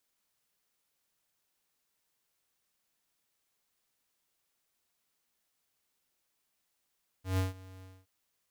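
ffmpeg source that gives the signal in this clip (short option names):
-f lavfi -i "aevalsrc='0.0398*(2*lt(mod(93.9*t,1),0.5)-1)':d=0.822:s=44100,afade=t=in:d=0.139,afade=t=out:st=0.139:d=0.152:silence=0.0794,afade=t=out:st=0.59:d=0.232"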